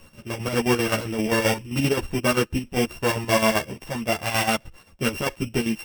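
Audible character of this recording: a buzz of ramps at a fixed pitch in blocks of 16 samples; chopped level 7.6 Hz, depth 60%, duty 60%; a shimmering, thickened sound

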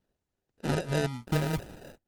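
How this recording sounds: phasing stages 4, 3.3 Hz, lowest notch 640–1500 Hz; aliases and images of a low sample rate 1.1 kHz, jitter 0%; Opus

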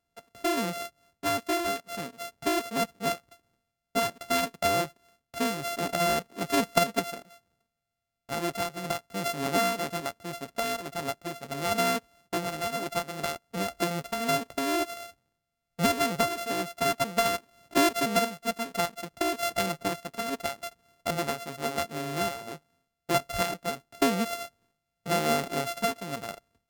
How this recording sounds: a buzz of ramps at a fixed pitch in blocks of 64 samples; random-step tremolo; Vorbis

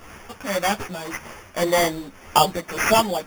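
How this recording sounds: a quantiser's noise floor 8-bit, dither triangular; tremolo triangle 1.8 Hz, depth 65%; aliases and images of a low sample rate 4 kHz, jitter 0%; a shimmering, thickened sound

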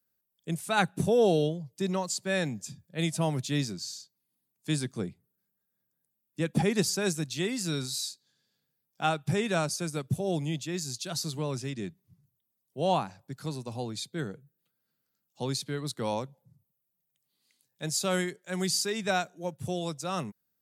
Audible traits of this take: noise floor -81 dBFS; spectral tilt -4.5 dB/octave

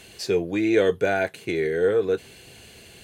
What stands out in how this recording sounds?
noise floor -48 dBFS; spectral tilt -4.5 dB/octave

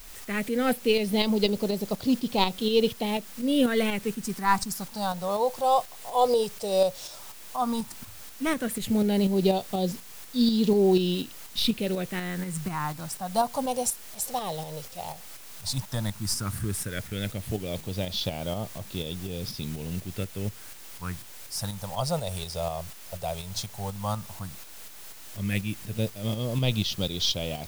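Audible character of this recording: phasing stages 4, 0.12 Hz, lowest notch 260–1700 Hz; a quantiser's noise floor 8-bit, dither triangular; tremolo saw up 4.1 Hz, depth 45%

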